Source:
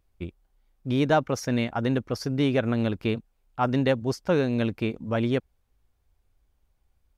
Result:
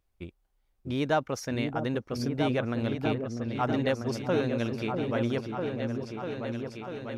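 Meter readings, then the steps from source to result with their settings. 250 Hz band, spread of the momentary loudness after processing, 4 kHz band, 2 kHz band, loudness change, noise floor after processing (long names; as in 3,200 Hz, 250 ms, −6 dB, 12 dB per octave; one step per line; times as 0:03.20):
−3.5 dB, 8 LU, −2.5 dB, −2.5 dB, −4.5 dB, −72 dBFS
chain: low-shelf EQ 360 Hz −4 dB
on a send: echo whose low-pass opens from repeat to repeat 645 ms, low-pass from 400 Hz, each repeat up 2 octaves, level −3 dB
on the sum: level −3.5 dB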